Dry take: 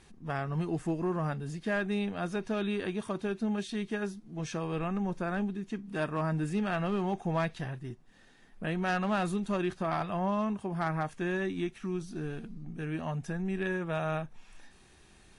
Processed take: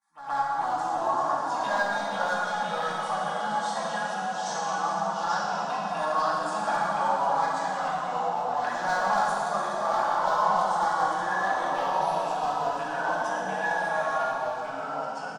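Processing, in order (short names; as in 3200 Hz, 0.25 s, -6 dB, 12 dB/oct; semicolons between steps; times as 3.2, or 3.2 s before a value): HPF 280 Hz 12 dB/oct; expander -48 dBFS; resonant low shelf 600 Hz -13 dB, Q 3; comb 3.6 ms, depth 73%; in parallel at -2 dB: compressor, threshold -42 dBFS, peak gain reduction 18.5 dB; on the sum: flange 0.18 Hz, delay 5 ms, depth 7.5 ms, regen -32%; hard clip -27 dBFS, distortion -15 dB; envelope phaser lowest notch 490 Hz, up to 2700 Hz, full sweep at -39 dBFS; on a send: reverse echo 0.122 s -12.5 dB; on the sum: plate-style reverb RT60 2.6 s, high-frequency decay 0.95×, DRR -4 dB; echoes that change speed 0.289 s, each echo -2 st, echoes 2; gain +4 dB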